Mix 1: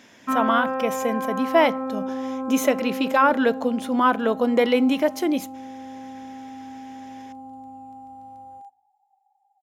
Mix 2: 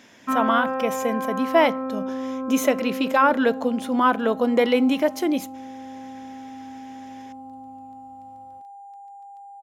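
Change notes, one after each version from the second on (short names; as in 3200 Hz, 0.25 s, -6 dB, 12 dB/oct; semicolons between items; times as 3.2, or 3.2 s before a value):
second sound: entry +2.45 s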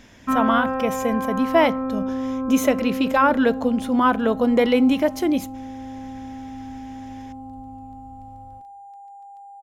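first sound: send +8.0 dB; master: remove Bessel high-pass 250 Hz, order 2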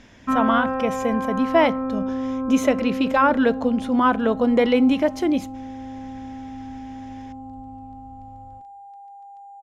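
master: add air absorption 50 m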